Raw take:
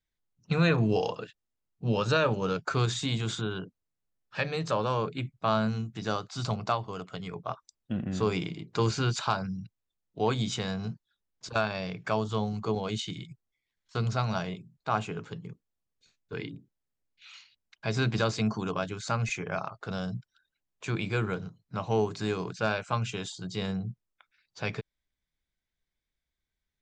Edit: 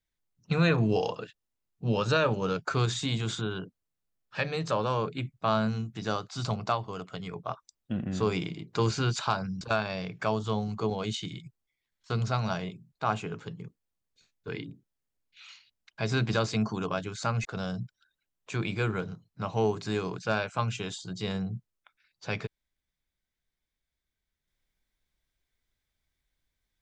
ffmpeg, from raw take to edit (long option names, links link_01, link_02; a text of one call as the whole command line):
ffmpeg -i in.wav -filter_complex "[0:a]asplit=3[link_01][link_02][link_03];[link_01]atrim=end=9.612[link_04];[link_02]atrim=start=11.458:end=19.302[link_05];[link_03]atrim=start=19.788[link_06];[link_04][link_05]acrossfade=duration=0.004:curve1=hsin:curve2=hsin[link_07];[link_07][link_06]acrossfade=duration=0.004:curve1=hsin:curve2=hsin" out.wav